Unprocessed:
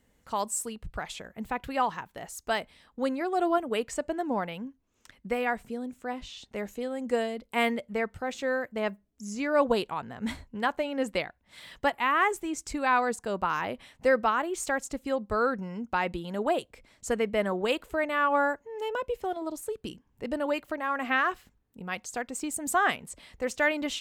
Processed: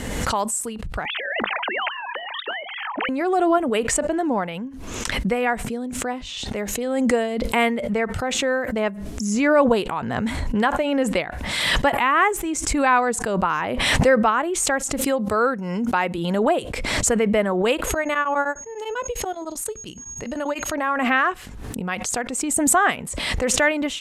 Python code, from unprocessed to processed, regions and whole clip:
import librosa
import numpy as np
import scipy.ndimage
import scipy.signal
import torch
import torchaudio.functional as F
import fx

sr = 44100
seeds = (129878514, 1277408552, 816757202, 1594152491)

y = fx.chain(x, sr, fx.sine_speech(),
    fx.steep_highpass(hz=200.0, slope=96),
    fx.spectral_comp(ratio=10.0), at=(1.05, 3.09))
y = fx.chain(y, sr, fx.highpass(hz=160.0, slope=6),
    fx.high_shelf(hz=8900.0, db=8.0), at=(15.01, 16.18))
y = fx.peak_eq(y, sr, hz=350.0, db=-4.0, octaves=1.9, at=(17.85, 20.72), fade=0.02)
y = fx.dmg_tone(y, sr, hz=6600.0, level_db=-57.0, at=(17.85, 20.72), fade=0.02)
y = fx.tremolo_abs(y, sr, hz=10.0, at=(17.85, 20.72), fade=0.02)
y = scipy.signal.sosfilt(scipy.signal.butter(4, 12000.0, 'lowpass', fs=sr, output='sos'), y)
y = fx.dynamic_eq(y, sr, hz=4700.0, q=1.6, threshold_db=-50.0, ratio=4.0, max_db=-6)
y = fx.pre_swell(y, sr, db_per_s=31.0)
y = y * 10.0 ** (6.5 / 20.0)